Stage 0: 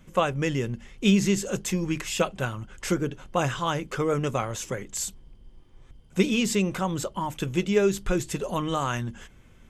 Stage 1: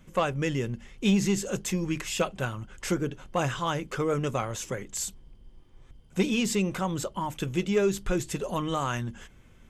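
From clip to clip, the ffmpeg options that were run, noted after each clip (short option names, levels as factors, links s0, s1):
-af "asoftclip=type=tanh:threshold=0.237,volume=0.841"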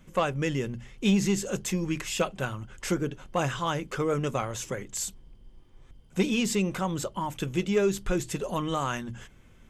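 -af "bandreject=f=60:t=h:w=6,bandreject=f=120:t=h:w=6"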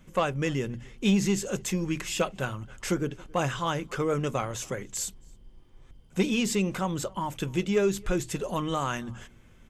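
-filter_complex "[0:a]asplit=2[s0][s1];[s1]adelay=274.1,volume=0.0501,highshelf=f=4000:g=-6.17[s2];[s0][s2]amix=inputs=2:normalize=0"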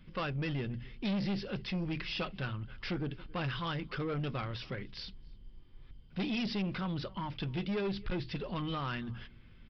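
-af "equalizer=f=660:t=o:w=2:g=-9,aresample=11025,asoftclip=type=tanh:threshold=0.0316,aresample=44100"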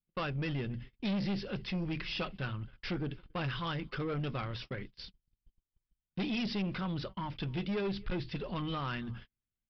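-af "agate=range=0.0126:threshold=0.00708:ratio=16:detection=peak"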